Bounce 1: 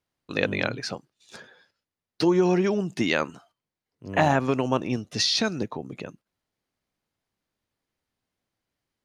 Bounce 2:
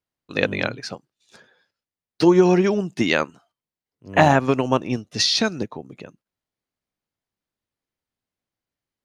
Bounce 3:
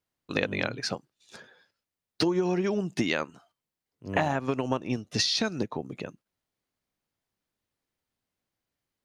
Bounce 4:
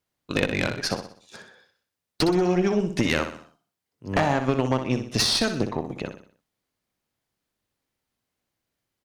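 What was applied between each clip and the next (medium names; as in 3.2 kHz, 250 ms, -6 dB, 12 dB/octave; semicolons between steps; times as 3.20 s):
upward expansion 1.5:1, over -42 dBFS; trim +7 dB
compression 6:1, threshold -26 dBFS, peak gain reduction 15.5 dB; trim +2 dB
valve stage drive 21 dB, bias 0.7; on a send: feedback delay 62 ms, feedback 43%, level -9 dB; on the sum: trim +7.5 dB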